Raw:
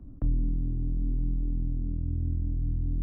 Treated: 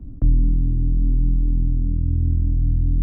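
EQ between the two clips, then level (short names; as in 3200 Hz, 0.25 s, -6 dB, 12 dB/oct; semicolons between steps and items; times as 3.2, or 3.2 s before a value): low shelf 420 Hz +10.5 dB; 0.0 dB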